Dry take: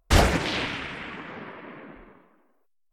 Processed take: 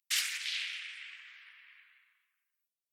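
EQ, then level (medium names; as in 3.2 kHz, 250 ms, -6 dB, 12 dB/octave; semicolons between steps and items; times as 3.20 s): inverse Chebyshev high-pass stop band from 600 Hz, stop band 60 dB; treble shelf 6.5 kHz +6 dB; -5.5 dB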